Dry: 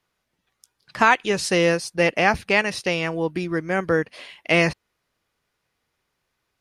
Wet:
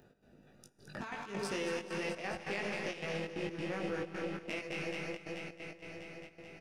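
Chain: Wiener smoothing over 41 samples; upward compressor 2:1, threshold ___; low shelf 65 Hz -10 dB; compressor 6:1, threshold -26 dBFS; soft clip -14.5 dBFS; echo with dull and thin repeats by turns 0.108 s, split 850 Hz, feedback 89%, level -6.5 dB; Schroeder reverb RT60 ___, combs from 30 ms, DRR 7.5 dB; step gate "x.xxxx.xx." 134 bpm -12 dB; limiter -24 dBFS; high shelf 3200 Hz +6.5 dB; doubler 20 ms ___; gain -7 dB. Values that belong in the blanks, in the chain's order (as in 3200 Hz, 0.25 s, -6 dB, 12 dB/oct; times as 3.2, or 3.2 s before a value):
-28 dBFS, 3.9 s, -2.5 dB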